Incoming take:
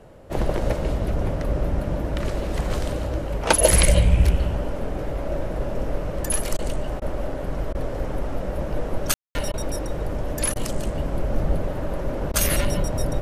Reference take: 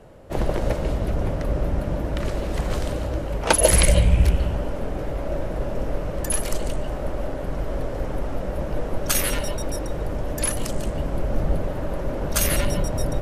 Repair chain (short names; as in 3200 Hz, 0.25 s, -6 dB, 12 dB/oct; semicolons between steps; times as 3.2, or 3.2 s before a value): room tone fill 9.14–9.35; interpolate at 6.57/7/7.73/9.52/10.54/12.32, 16 ms